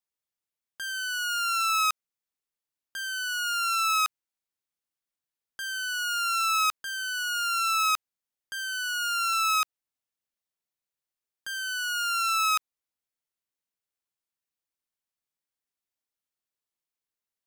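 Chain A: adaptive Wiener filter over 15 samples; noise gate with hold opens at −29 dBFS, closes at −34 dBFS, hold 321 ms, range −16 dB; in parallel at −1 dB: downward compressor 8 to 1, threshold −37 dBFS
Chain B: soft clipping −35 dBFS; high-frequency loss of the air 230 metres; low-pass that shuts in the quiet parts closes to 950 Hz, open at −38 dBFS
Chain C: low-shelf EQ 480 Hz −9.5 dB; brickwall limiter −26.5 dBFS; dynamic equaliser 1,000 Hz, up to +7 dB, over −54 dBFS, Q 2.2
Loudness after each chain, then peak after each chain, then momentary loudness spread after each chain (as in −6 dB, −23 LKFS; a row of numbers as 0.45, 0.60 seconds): −25.0, −38.5, −31.5 LKFS; −17.5, −35.5, −27.5 dBFS; 11, 7, 7 LU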